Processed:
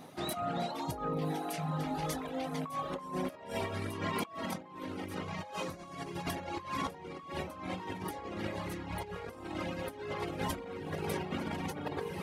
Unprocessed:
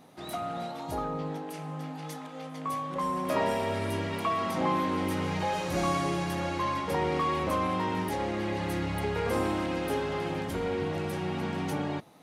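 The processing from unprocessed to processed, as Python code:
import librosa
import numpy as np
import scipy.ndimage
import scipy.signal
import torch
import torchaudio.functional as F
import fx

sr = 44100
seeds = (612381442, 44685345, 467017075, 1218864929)

y = fx.echo_diffused(x, sr, ms=1143, feedback_pct=65, wet_db=-10)
y = fx.dereverb_blind(y, sr, rt60_s=1.1)
y = fx.over_compress(y, sr, threshold_db=-37.0, ratio=-0.5)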